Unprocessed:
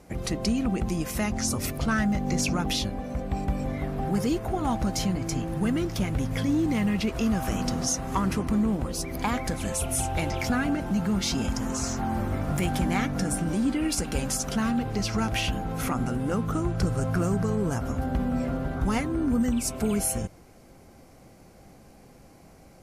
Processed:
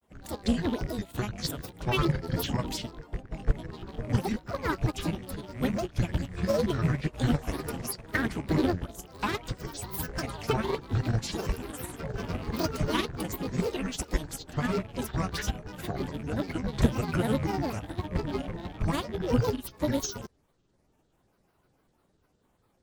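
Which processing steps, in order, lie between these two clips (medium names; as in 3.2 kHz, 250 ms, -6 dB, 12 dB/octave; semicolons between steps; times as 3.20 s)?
rattle on loud lows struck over -34 dBFS, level -30 dBFS; formant shift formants +2 st; granulator, spray 13 ms, pitch spread up and down by 12 st; upward expansion 2.5:1, over -36 dBFS; trim +5 dB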